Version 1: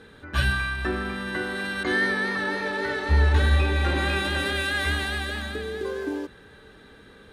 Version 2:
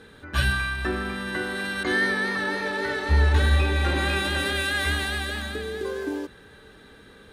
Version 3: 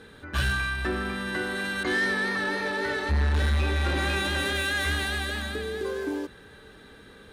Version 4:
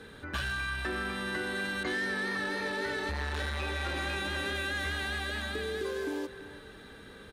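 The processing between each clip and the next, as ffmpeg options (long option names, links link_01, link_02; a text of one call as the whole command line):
ffmpeg -i in.wav -af "highshelf=frequency=5900:gain=5" out.wav
ffmpeg -i in.wav -af "asoftclip=type=tanh:threshold=-19.5dB" out.wav
ffmpeg -i in.wav -filter_complex "[0:a]acrossover=split=380|2100|7100[link_01][link_02][link_03][link_04];[link_01]acompressor=threshold=-39dB:ratio=4[link_05];[link_02]acompressor=threshold=-36dB:ratio=4[link_06];[link_03]acompressor=threshold=-40dB:ratio=4[link_07];[link_04]acompressor=threshold=-56dB:ratio=4[link_08];[link_05][link_06][link_07][link_08]amix=inputs=4:normalize=0,asplit=2[link_09][link_10];[link_10]adelay=340,highpass=300,lowpass=3400,asoftclip=type=hard:threshold=-30dB,volume=-13dB[link_11];[link_09][link_11]amix=inputs=2:normalize=0" out.wav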